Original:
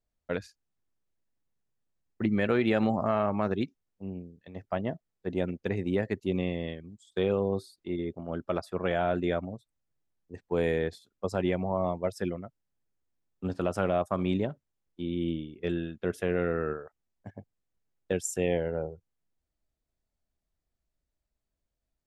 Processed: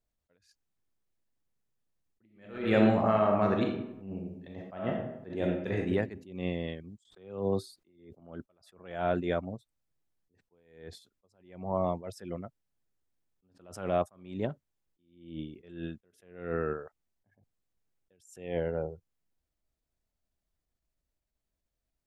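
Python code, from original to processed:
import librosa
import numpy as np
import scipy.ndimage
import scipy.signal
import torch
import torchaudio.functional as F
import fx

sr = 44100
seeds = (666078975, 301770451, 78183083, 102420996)

y = fx.reverb_throw(x, sr, start_s=2.24, length_s=3.64, rt60_s=0.89, drr_db=1.0)
y = fx.band_squash(y, sr, depth_pct=100, at=(7.05, 8.2))
y = fx.attack_slew(y, sr, db_per_s=100.0)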